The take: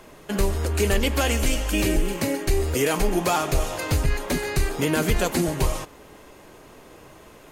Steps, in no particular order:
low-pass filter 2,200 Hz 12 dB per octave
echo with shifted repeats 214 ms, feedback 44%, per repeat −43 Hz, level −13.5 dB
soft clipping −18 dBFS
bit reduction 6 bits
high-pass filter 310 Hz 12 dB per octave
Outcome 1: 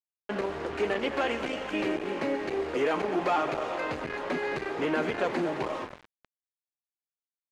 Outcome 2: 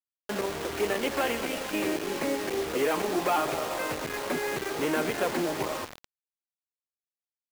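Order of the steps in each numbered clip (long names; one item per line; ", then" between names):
echo with shifted repeats, then soft clipping, then high-pass filter, then bit reduction, then low-pass filter
low-pass filter, then soft clipping, then high-pass filter, then echo with shifted repeats, then bit reduction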